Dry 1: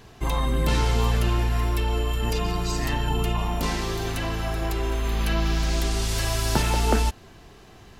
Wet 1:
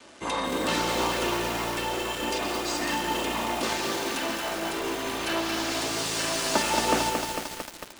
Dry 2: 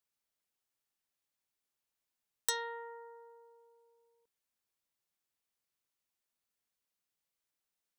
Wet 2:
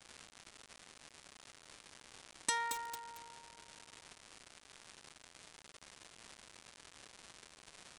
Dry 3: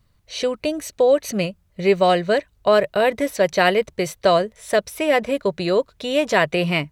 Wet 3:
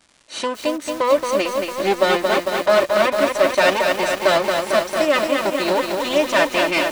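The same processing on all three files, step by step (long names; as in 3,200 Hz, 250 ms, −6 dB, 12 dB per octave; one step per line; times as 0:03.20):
lower of the sound and its delayed copy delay 3.3 ms
high-pass filter 240 Hz 12 dB per octave
surface crackle 320 per second −40 dBFS
downsampling to 22,050 Hz
feedback echo at a low word length 225 ms, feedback 80%, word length 6 bits, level −4 dB
level +1.5 dB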